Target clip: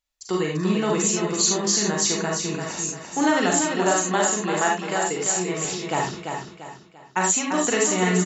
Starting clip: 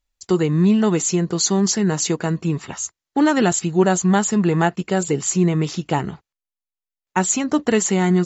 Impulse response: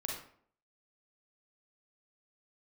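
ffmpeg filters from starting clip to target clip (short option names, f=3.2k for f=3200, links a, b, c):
-filter_complex "[0:a]lowshelf=f=360:g=-12,asettb=1/sr,asplit=3[a][b][c];[a]atrim=end=3.574[d];[b]atrim=start=3.57:end=5.65,asetpts=PTS-STARTPTS,afade=t=in:d=0.004:c=qsin,afade=t=out:st=2.076:d=0.004:c=qsin,acrossover=split=330|3000[e][f][g];[e]acompressor=threshold=-47dB:ratio=1.5[h];[h][f][g]amix=inputs=3:normalize=0[i];[c]atrim=start=5.646[j];[d][i]acrossfade=d=0.004:c1=hsin:c2=qsin[k];[k][j]acrossfade=d=0.004:c1=qsin:c2=hsin,aecho=1:1:342|684|1026|1368:0.501|0.185|0.0686|0.0254[l];[1:a]atrim=start_sample=2205,atrim=end_sample=4410[m];[l][m]afir=irnorm=-1:irlink=0"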